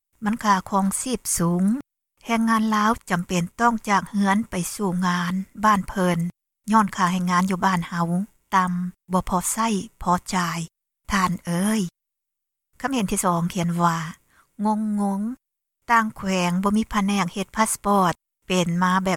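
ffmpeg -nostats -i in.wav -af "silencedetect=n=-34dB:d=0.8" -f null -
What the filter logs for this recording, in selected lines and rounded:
silence_start: 11.88
silence_end: 12.80 | silence_duration: 0.92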